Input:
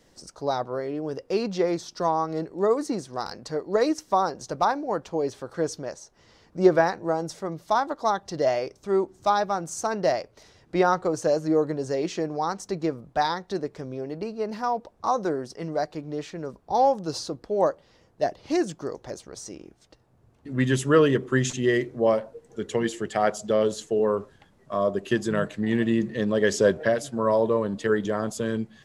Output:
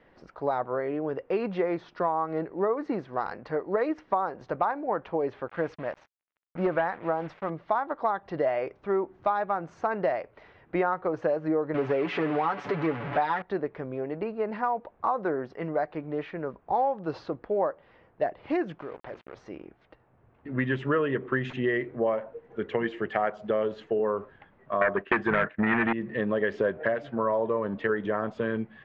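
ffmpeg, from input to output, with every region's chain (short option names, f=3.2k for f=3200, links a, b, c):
-filter_complex "[0:a]asettb=1/sr,asplit=3[a][b][c];[a]atrim=end=5.484[d];[b]atrim=start=5.48:end=7.5,asetpts=PTS-STARTPTS,afade=t=in:d=0.004:c=qsin,afade=t=out:st=2.016:d=0.004:c=qsin,equalizer=f=400:w=3.2:g=-6.5,acrusher=bits=6:mix=0:aa=0.5,volume=14.5dB,asoftclip=hard,volume=-14.5dB[e];[c]atrim=start=7.496[f];[d][e]acrossfade=d=0.004:c1=hsin:c2=qsin[g];[g][f]acrossfade=d=0.004:c1=qsin:c2=hsin,asettb=1/sr,asplit=3[h][i][j];[h]atrim=end=11.744[k];[i]atrim=start=11.74:end=13.42,asetpts=PTS-STARTPTS,afade=t=in:d=0.004:c=qsin,afade=t=out:st=1.676:d=0.004:c=qsin,aeval=exprs='val(0)+0.5*0.0398*sgn(val(0))':c=same,highpass=f=160:p=1,aecho=1:1:7:0.65,atrim=end_sample=74088[l];[j]atrim=start=13.416[m];[k][l]acrossfade=d=0.004:c1=hsin:c2=qsin[n];[n][m]acrossfade=d=0.004:c1=qsin:c2=hsin,asettb=1/sr,asplit=3[o][p][q];[o]atrim=end=18.794[r];[p]atrim=start=18.79:end=19.35,asetpts=PTS-STARTPTS,afade=t=in:d=0.004:c=qsin,afade=t=out:st=0.556:d=0.004:c=qsin,bandreject=f=60:t=h:w=6,bandreject=f=120:t=h:w=6,bandreject=f=180:t=h:w=6,bandreject=f=240:t=h:w=6,bandreject=f=300:t=h:w=6,bandreject=f=360:t=h:w=6,acrusher=bits=6:mix=0:aa=0.5,acompressor=threshold=-41dB:ratio=2:attack=3.2:release=140:knee=1:detection=peak[s];[q]atrim=start=19.346[t];[r][s]acrossfade=d=0.004:c1=hsin:c2=qsin[u];[u][t]acrossfade=d=0.004:c1=qsin:c2=hsin,asettb=1/sr,asplit=3[v][w][x];[v]atrim=end=24.814[y];[w]atrim=start=24.81:end=25.93,asetpts=PTS-STARTPTS,afade=t=in:d=0.004:c=qsin,afade=t=out:st=1.116:d=0.004:c=qsin,agate=range=-33dB:threshold=-30dB:ratio=3:release=100:detection=peak,aeval=exprs='0.299*sin(PI/2*2.51*val(0)/0.299)':c=same,equalizer=f=1.6k:w=1.4:g=9.5[z];[x]atrim=start=25.926[aa];[y][z]acrossfade=d=0.004:c1=hsin:c2=qsin[ab];[ab][aa]acrossfade=d=0.004:c1=qsin:c2=hsin,lowpass=f=2.4k:w=0.5412,lowpass=f=2.4k:w=1.3066,lowshelf=f=470:g=-8.5,acompressor=threshold=-29dB:ratio=4,volume=5.5dB"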